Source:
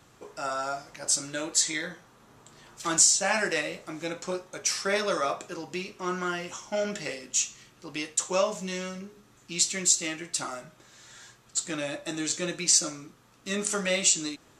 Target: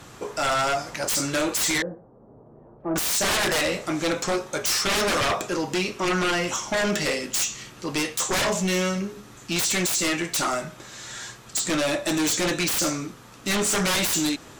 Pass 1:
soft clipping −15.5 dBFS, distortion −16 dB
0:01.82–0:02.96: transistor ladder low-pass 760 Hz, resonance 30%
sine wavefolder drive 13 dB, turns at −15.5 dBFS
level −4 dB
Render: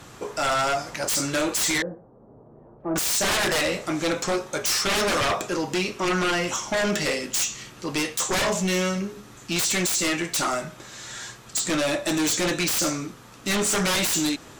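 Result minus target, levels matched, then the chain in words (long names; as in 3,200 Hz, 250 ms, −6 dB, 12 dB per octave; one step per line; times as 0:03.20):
soft clipping: distortion +11 dB
soft clipping −8 dBFS, distortion −27 dB
0:01.82–0:02.96: transistor ladder low-pass 760 Hz, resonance 30%
sine wavefolder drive 13 dB, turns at −15.5 dBFS
level −4 dB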